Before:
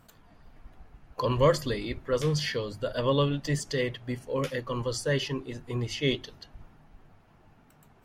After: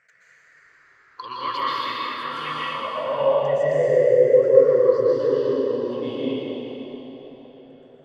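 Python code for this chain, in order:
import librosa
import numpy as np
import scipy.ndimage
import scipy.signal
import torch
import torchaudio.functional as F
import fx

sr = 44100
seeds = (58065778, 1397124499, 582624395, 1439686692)

y = fx.spec_ripple(x, sr, per_octave=0.54, drift_hz=-0.26, depth_db=16)
y = fx.rev_plate(y, sr, seeds[0], rt60_s=3.8, hf_ratio=0.95, predelay_ms=110, drr_db=-8.5)
y = fx.filter_sweep_bandpass(y, sr, from_hz=2100.0, to_hz=510.0, start_s=1.95, end_s=4.2, q=3.6)
y = y * librosa.db_to_amplitude(6.5)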